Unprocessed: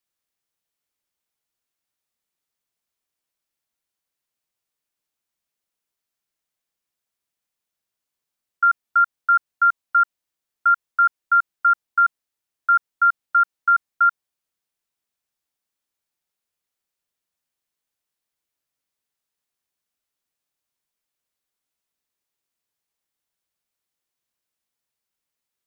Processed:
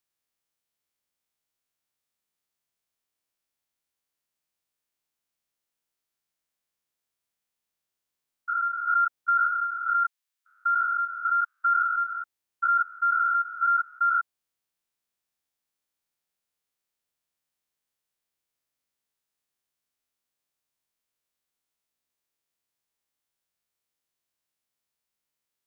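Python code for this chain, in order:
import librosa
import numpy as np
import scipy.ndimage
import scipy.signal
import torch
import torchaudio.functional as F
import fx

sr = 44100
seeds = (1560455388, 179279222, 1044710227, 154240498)

y = fx.spec_steps(x, sr, hold_ms=200)
y = fx.highpass(y, sr, hz=1100.0, slope=12, at=(9.64, 11.66))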